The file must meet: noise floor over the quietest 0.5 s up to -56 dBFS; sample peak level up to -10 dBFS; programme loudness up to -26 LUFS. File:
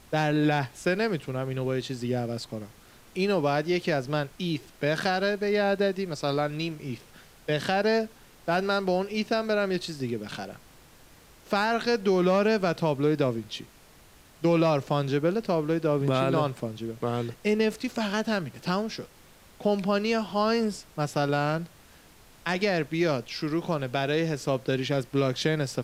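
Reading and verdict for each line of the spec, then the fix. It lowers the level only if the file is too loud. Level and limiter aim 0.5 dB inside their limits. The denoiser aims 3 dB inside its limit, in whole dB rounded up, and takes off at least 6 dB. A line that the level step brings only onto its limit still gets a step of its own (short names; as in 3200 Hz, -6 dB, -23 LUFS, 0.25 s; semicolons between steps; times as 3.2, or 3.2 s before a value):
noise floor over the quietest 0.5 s -54 dBFS: fail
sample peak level -10.5 dBFS: OK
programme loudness -27.5 LUFS: OK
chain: denoiser 6 dB, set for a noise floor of -54 dBFS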